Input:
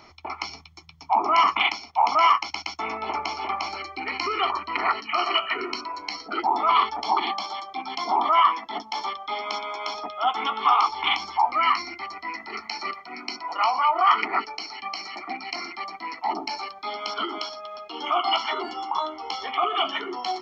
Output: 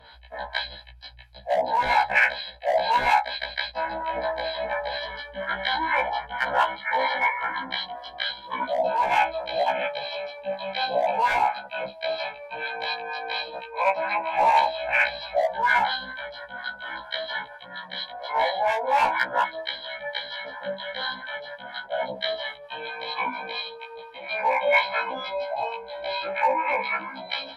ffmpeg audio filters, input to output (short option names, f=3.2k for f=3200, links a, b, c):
-filter_complex "[0:a]equalizer=f=360:t=o:w=1.4:g=-15,acrossover=split=2800[a][b];[a]asoftclip=type=hard:threshold=-18.5dB[c];[c][b]amix=inputs=2:normalize=0,acrossover=split=1000[d][e];[d]aeval=exprs='val(0)*(1-0.7/2+0.7/2*cos(2*PI*5.8*n/s))':c=same[f];[e]aeval=exprs='val(0)*(1-0.7/2-0.7/2*cos(2*PI*5.8*n/s))':c=same[g];[f][g]amix=inputs=2:normalize=0,asetrate=32667,aresample=44100,afftfilt=real='re*1.73*eq(mod(b,3),0)':imag='im*1.73*eq(mod(b,3),0)':win_size=2048:overlap=0.75,volume=8.5dB"